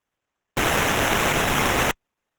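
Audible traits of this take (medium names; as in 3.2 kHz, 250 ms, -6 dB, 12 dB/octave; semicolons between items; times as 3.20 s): aliases and images of a low sample rate 4.6 kHz, jitter 0%; Opus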